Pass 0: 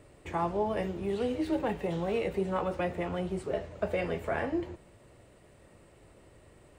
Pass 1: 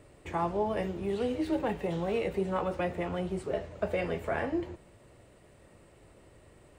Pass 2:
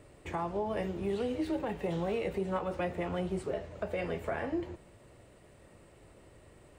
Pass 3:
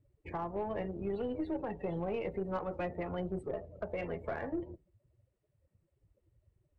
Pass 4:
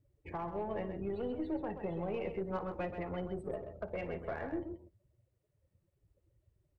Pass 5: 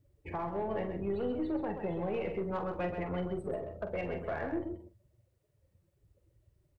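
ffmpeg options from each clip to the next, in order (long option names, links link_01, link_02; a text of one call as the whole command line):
ffmpeg -i in.wav -af anull out.wav
ffmpeg -i in.wav -af "alimiter=limit=-24dB:level=0:latency=1:release=223" out.wav
ffmpeg -i in.wav -af "afftdn=noise_reduction=26:noise_floor=-43,aeval=exprs='0.0668*(cos(1*acos(clip(val(0)/0.0668,-1,1)))-cos(1*PI/2))+0.00335*(cos(4*acos(clip(val(0)/0.0668,-1,1)))-cos(4*PI/2))+0.000944*(cos(7*acos(clip(val(0)/0.0668,-1,1)))-cos(7*PI/2))':channel_layout=same,volume=-3dB" out.wav
ffmpeg -i in.wav -af "aecho=1:1:57|130:0.126|0.376,volume=-2dB" out.wav
ffmpeg -i in.wav -filter_complex "[0:a]asoftclip=type=tanh:threshold=-29.5dB,asplit=2[link_01][link_02];[link_02]adelay=45,volume=-9.5dB[link_03];[link_01][link_03]amix=inputs=2:normalize=0,volume=4dB" out.wav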